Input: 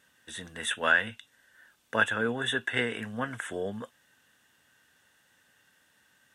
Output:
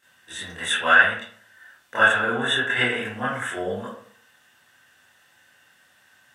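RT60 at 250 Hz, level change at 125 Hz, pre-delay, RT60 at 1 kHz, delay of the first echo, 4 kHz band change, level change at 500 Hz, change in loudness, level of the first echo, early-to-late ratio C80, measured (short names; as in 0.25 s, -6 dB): 0.60 s, +4.0 dB, 21 ms, 0.60 s, none, +8.0 dB, +5.5 dB, +8.5 dB, none, 7.0 dB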